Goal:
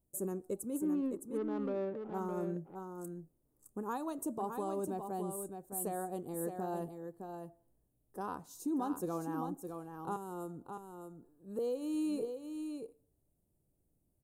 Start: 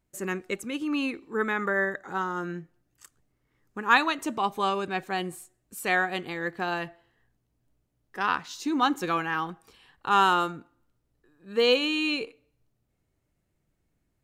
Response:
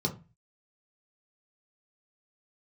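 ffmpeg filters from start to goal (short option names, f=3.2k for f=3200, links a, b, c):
-filter_complex "[0:a]firequalizer=gain_entry='entry(600,0);entry(2000,-30);entry(9100,6)':delay=0.05:min_phase=1,asettb=1/sr,asplit=3[a][b][c];[a]atrim=end=10.164[d];[b]atrim=start=10.16:end=11.59,asetpts=PTS-STARTPTS,afade=t=in:d=0.004:c=qsin,afade=t=out:st=1.426:d=0.004:c=qsin,acrossover=split=400|7100[e][f][g];[e]acompressor=threshold=-39dB:ratio=4[h];[f]acompressor=threshold=-41dB:ratio=4[i];[g]acompressor=threshold=-52dB:ratio=4[j];[h][i][j]amix=inputs=3:normalize=0[k];[c]atrim=start=11.586[l];[d][k]acrossfade=d=0.004:c1=hsin:c2=qsin[m];[m][l]acrossfade=d=0.004:c1=qsin:c2=hsin,alimiter=level_in=1dB:limit=-24dB:level=0:latency=1:release=251,volume=-1dB,asettb=1/sr,asplit=3[n][o][p];[n]atrim=end=0.764[q];[o]atrim=start=0.76:end=2.14,asetpts=PTS-STARTPTS,afade=t=in:d=0.004:c=qsin,afade=t=out:st=1.376:d=0.004:c=qsin,adynamicsmooth=sensitivity=6:basefreq=790[r];[p]atrim=start=2.136[s];[q][r]acrossfade=d=0.004:c1=hsin:c2=qsin[t];[t][s]acrossfade=d=0.004:c1=qsin:c2=hsin,aecho=1:1:613:0.473,volume=-3.5dB"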